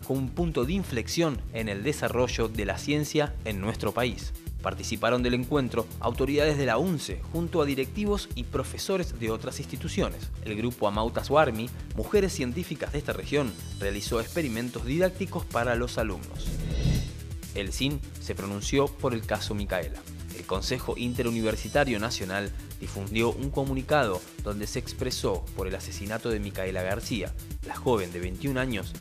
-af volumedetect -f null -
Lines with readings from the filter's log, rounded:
mean_volume: -28.7 dB
max_volume: -8.5 dB